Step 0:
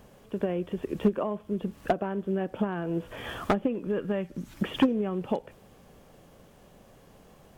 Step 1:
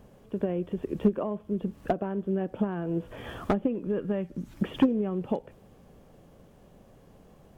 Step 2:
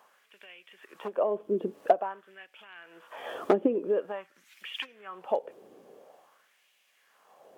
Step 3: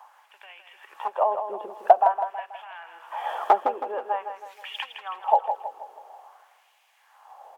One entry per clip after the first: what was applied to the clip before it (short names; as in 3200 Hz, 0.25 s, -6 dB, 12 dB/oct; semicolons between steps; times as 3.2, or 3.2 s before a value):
tilt shelf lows +4 dB, about 780 Hz; gain -2.5 dB
LFO high-pass sine 0.48 Hz 350–2500 Hz
resonant high-pass 840 Hz, resonance Q 6.1; feedback echo 0.161 s, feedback 45%, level -8.5 dB; gain +1.5 dB